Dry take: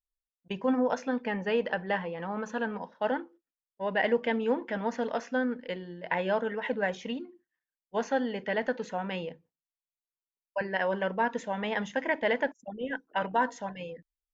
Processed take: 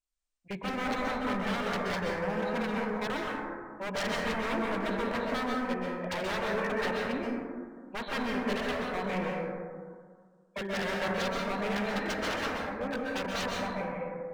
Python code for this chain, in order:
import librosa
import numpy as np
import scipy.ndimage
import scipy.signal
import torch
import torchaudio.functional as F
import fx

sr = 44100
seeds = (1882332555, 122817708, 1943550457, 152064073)

y = fx.freq_compress(x, sr, knee_hz=1600.0, ratio=1.5)
y = 10.0 ** (-30.0 / 20.0) * (np.abs((y / 10.0 ** (-30.0 / 20.0) + 3.0) % 4.0 - 2.0) - 1.0)
y = fx.rev_plate(y, sr, seeds[0], rt60_s=1.9, hf_ratio=0.25, predelay_ms=115, drr_db=-2.5)